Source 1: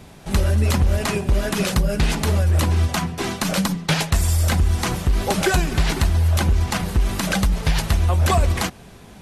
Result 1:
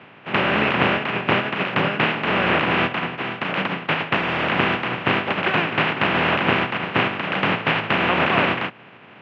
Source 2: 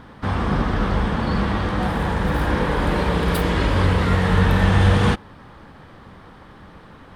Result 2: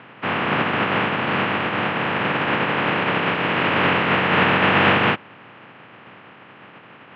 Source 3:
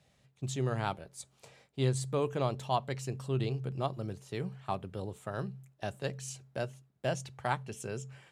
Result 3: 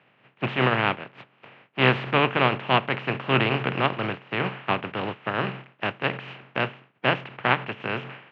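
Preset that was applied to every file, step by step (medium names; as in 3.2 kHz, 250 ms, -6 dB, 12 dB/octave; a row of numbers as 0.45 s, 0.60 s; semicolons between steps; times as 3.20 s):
spectral contrast reduction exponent 0.32; Chebyshev band-pass 110–2800 Hz, order 4; peak normalisation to -3 dBFS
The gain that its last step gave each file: +2.0 dB, +2.0 dB, +12.5 dB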